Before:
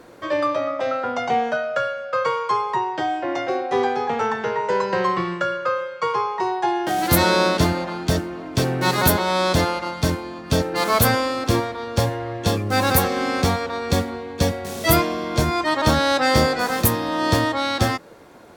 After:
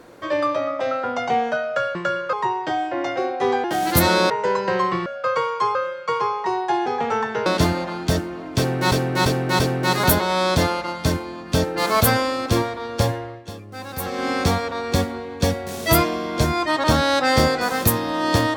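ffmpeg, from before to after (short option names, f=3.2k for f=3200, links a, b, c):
-filter_complex "[0:a]asplit=14[a][b][c][d][e][f][g][h][i][j][k][l][m][n];[a]atrim=end=1.952[o];[b]atrim=start=5.308:end=5.692[p];[c]atrim=start=2.638:end=3.952[q];[d]atrim=start=6.798:end=7.462[r];[e]atrim=start=4.548:end=5.312[s];[f]atrim=start=1.948:end=2.642[t];[g]atrim=start=5.688:end=6.802[u];[h]atrim=start=3.948:end=4.552[v];[i]atrim=start=7.458:end=8.922[w];[j]atrim=start=8.578:end=8.922[x];[k]atrim=start=8.578:end=8.922[y];[l]atrim=start=8.578:end=12.42,asetpts=PTS-STARTPTS,afade=t=out:st=3.512:d=0.33:silence=0.177828[z];[m]atrim=start=12.42:end=12.94,asetpts=PTS-STARTPTS,volume=-15dB[aa];[n]atrim=start=12.94,asetpts=PTS-STARTPTS,afade=t=in:d=0.33:silence=0.177828[ab];[o][p]acrossfade=d=0.004:c1=hsin:c2=hsin[ac];[ac][q]acrossfade=d=0.004:c1=hsin:c2=hsin[ad];[ad][r]acrossfade=d=0.004:c1=hsin:c2=hsin[ae];[ae][s]acrossfade=d=0.004:c1=hsin:c2=hsin[af];[af][t]acrossfade=d=0.004:c1=hsin:c2=hsin[ag];[ag][u]acrossfade=d=0.004:c1=hsin:c2=hsin[ah];[ah][v]acrossfade=d=0.004:c1=hsin:c2=hsin[ai];[ai][w]acrossfade=d=0.004:c1=hsin:c2=hsin[aj];[aj][x]acrossfade=d=0.004:c1=hsin:c2=hsin[ak];[ak][y]acrossfade=d=0.004:c1=hsin:c2=hsin[al];[z][aa][ab]concat=n=3:v=0:a=1[am];[al][am]acrossfade=d=0.004:c1=hsin:c2=hsin"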